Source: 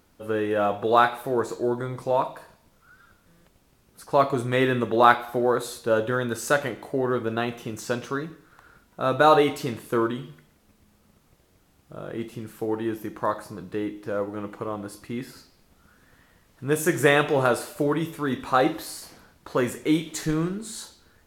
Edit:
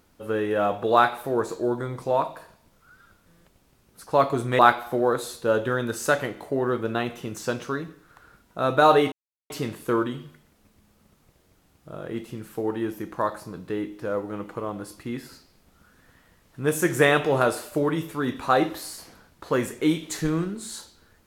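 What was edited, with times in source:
4.59–5.01 cut
9.54 insert silence 0.38 s

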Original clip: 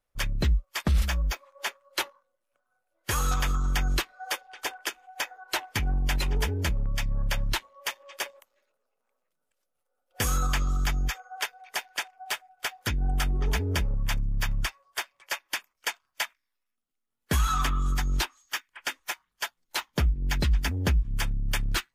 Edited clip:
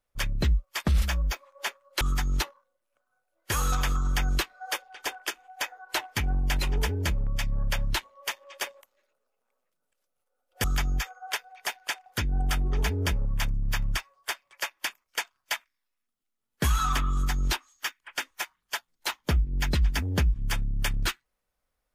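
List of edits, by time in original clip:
10.23–10.73 cut
12.15–12.75 cut
17.81–18.22 copy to 2.01

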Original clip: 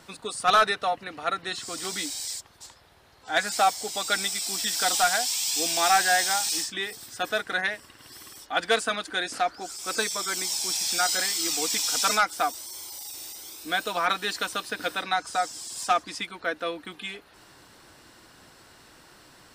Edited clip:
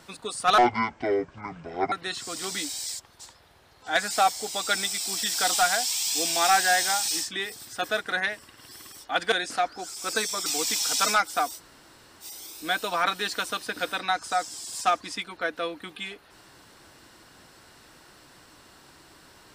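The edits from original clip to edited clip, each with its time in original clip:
0.58–1.33 speed 56%
8.73–9.14 cut
10.28–11.49 cut
12.61–13.26 room tone, crossfade 0.06 s

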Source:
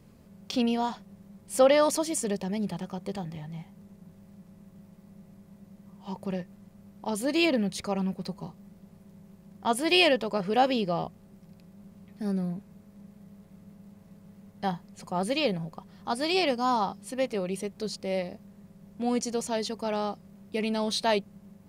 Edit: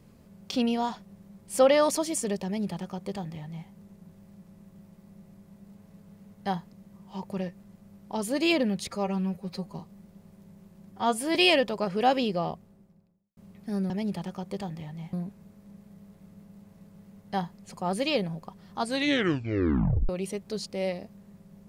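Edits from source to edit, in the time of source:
2.45–3.68 copy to 12.43
7.83–8.34 stretch 1.5×
9.59–9.88 stretch 1.5×
10.88–11.9 studio fade out
13.83–14.9 copy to 5.66
16.09 tape stop 1.30 s

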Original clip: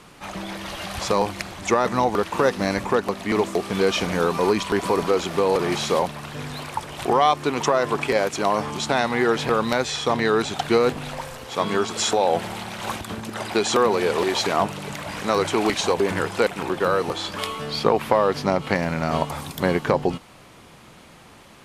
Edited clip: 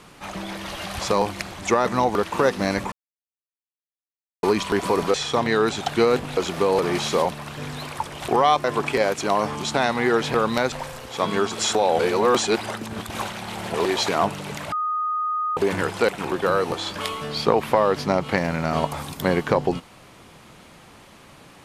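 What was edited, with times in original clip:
2.92–4.43 mute
7.41–7.79 cut
9.87–11.1 move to 5.14
12.37–14.12 reverse
15.1–15.95 bleep 1240 Hz -21.5 dBFS

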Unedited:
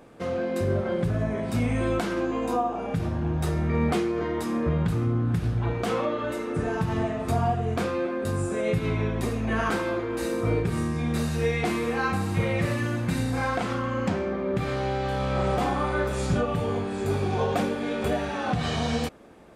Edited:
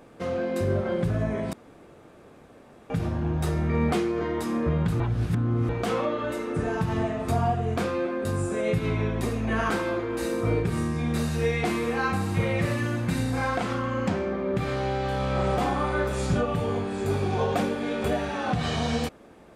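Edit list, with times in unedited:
1.53–2.9 room tone
5–5.69 reverse

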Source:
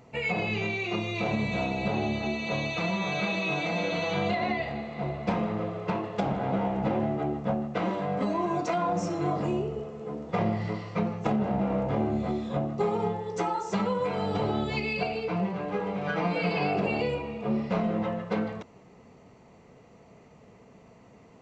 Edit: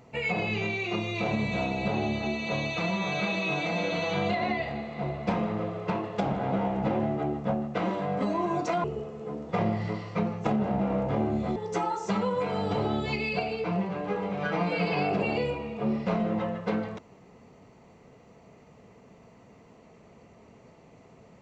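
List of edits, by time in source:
8.84–9.64 cut
12.36–13.2 cut

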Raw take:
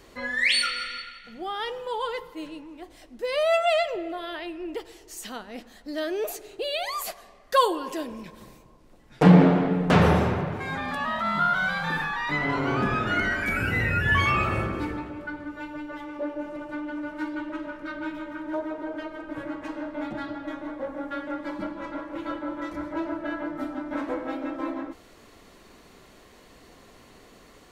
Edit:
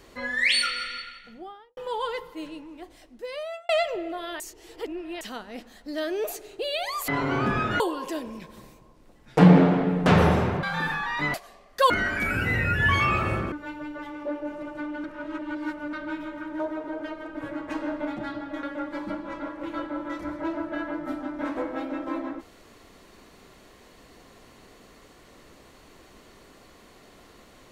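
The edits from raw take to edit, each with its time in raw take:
1.12–1.77 studio fade out
2.79–3.69 fade out
4.4–5.21 reverse
7.08–7.64 swap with 12.44–13.16
10.47–11.73 cut
14.78–15.46 cut
16.98–17.87 reverse
19.62–19.99 gain +3.5 dB
20.57–21.15 cut

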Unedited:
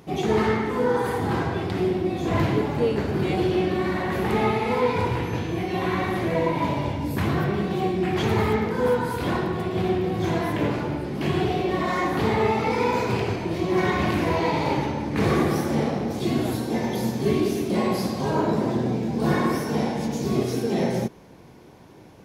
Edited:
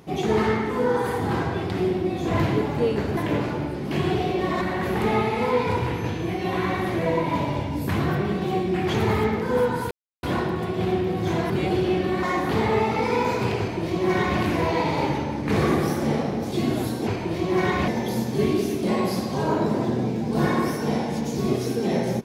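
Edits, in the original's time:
3.17–3.9 swap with 10.47–11.91
9.2 insert silence 0.32 s
13.27–14.08 copy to 16.75

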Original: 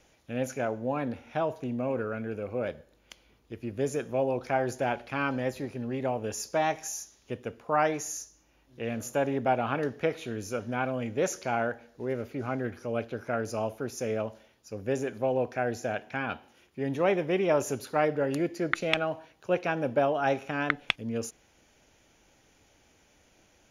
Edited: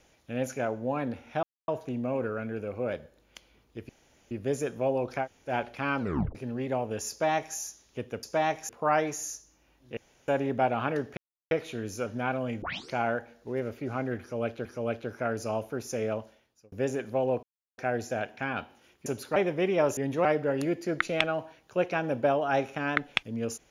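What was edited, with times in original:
1.43 insert silence 0.25 s
3.64 insert room tone 0.42 s
4.56–4.82 room tone, crossfade 0.10 s
5.33 tape stop 0.35 s
6.43–6.89 copy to 7.56
8.84–9.15 room tone
10.04 insert silence 0.34 s
11.15 tape start 0.30 s
12.73–13.18 loop, 2 plays
14.24–14.8 fade out
15.51 insert silence 0.35 s
16.79–17.07 swap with 17.68–17.98

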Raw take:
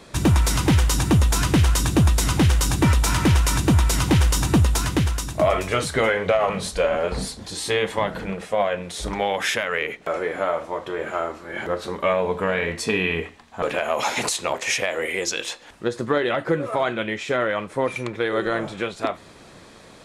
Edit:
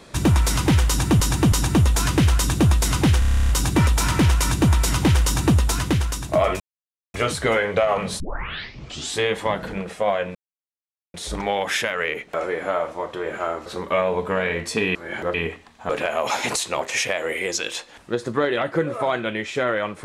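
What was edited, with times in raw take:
0.88–1.2 loop, 3 plays
2.55 stutter 0.03 s, 11 plays
5.66 insert silence 0.54 s
6.72 tape start 1.00 s
8.87 insert silence 0.79 s
11.39–11.78 move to 13.07

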